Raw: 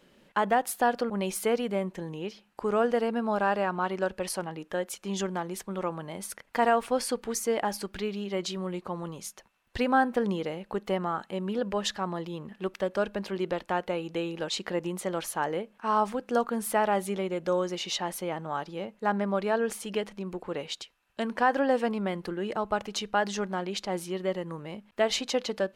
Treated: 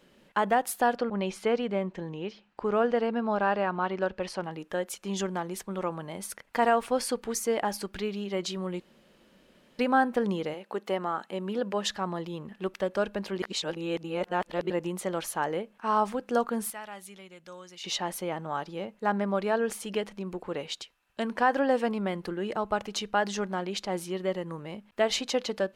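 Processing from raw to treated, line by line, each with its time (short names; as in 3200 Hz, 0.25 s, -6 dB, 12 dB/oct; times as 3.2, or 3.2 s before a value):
0.96–4.44 LPF 4600 Hz
8.8–9.79 room tone
10.53–11.88 HPF 320 Hz -> 140 Hz
13.42–14.7 reverse
16.7–17.84 passive tone stack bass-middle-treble 5-5-5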